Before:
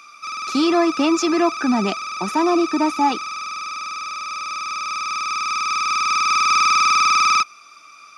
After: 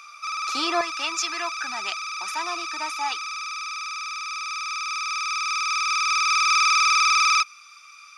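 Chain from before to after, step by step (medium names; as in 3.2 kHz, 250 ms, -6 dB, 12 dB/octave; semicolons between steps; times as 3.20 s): high-pass 770 Hz 12 dB/octave, from 0.81 s 1.5 kHz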